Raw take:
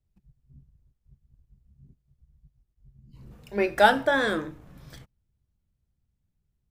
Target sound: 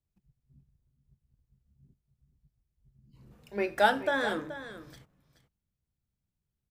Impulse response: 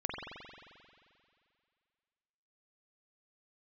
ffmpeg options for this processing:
-af "lowshelf=f=71:g=-9,aecho=1:1:427:0.224,volume=-5.5dB"

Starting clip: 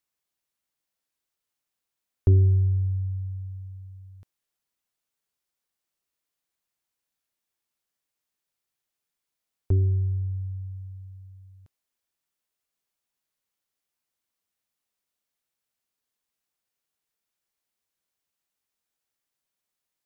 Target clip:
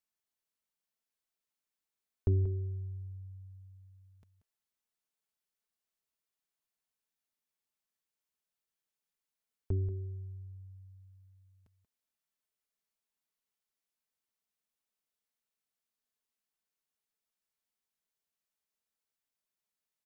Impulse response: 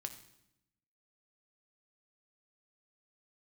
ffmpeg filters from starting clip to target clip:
-af "aecho=1:1:4.6:0.37,aecho=1:1:184:0.251,volume=-7.5dB"

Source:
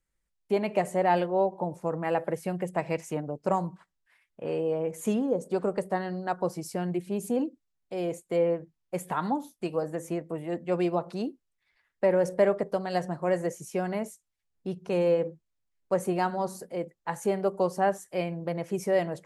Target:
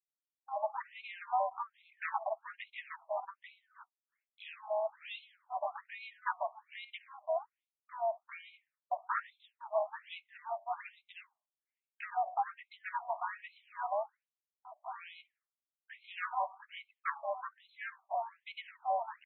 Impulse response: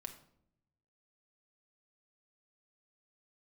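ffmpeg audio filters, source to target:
-filter_complex "[0:a]agate=range=-33dB:threshold=-48dB:ratio=3:detection=peak,lowshelf=f=140:t=q:w=1.5:g=9.5,acrossover=split=340[a][b];[b]acompressor=threshold=-35dB:ratio=8[c];[a][c]amix=inputs=2:normalize=0,asplit=3[d][e][f];[e]asetrate=33038,aresample=44100,atempo=1.33484,volume=-12dB[g];[f]asetrate=58866,aresample=44100,atempo=0.749154,volume=-4dB[h];[d][g][h]amix=inputs=3:normalize=0,afftfilt=real='re*between(b*sr/1024,810*pow(3000/810,0.5+0.5*sin(2*PI*1.2*pts/sr))/1.41,810*pow(3000/810,0.5+0.5*sin(2*PI*1.2*pts/sr))*1.41)':imag='im*between(b*sr/1024,810*pow(3000/810,0.5+0.5*sin(2*PI*1.2*pts/sr))/1.41,810*pow(3000/810,0.5+0.5*sin(2*PI*1.2*pts/sr))*1.41)':win_size=1024:overlap=0.75,volume=6dB"

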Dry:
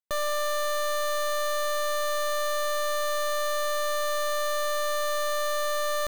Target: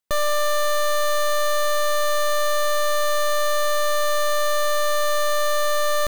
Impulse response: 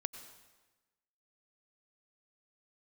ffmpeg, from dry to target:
-af "aeval=exprs='clip(val(0),-1,0.0224)':c=same,volume=8.5dB"

